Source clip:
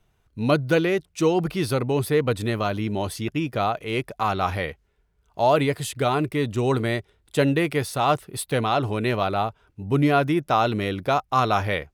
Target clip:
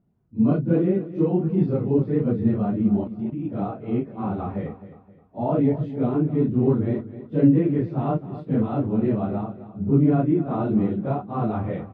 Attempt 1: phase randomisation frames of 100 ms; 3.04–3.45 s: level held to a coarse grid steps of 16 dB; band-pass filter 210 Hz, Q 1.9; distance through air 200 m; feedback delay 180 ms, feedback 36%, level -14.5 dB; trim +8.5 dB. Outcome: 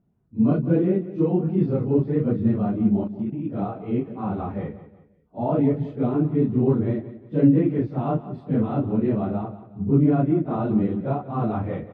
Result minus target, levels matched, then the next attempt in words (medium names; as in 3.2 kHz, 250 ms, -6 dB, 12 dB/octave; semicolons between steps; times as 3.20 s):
echo 81 ms early
phase randomisation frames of 100 ms; 3.04–3.45 s: level held to a coarse grid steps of 16 dB; band-pass filter 210 Hz, Q 1.9; distance through air 200 m; feedback delay 261 ms, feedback 36%, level -14.5 dB; trim +8.5 dB